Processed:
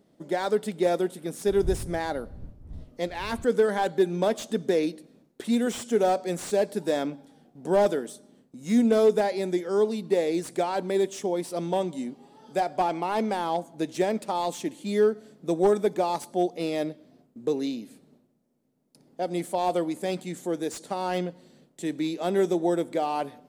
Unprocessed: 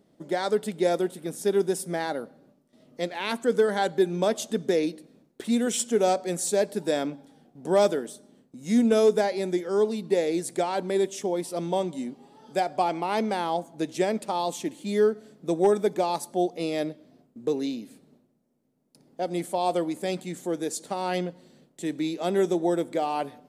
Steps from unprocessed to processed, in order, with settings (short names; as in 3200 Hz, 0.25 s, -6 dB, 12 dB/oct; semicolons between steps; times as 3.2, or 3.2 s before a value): 1.46–3.44 wind noise 86 Hz -36 dBFS; slew limiter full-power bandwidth 100 Hz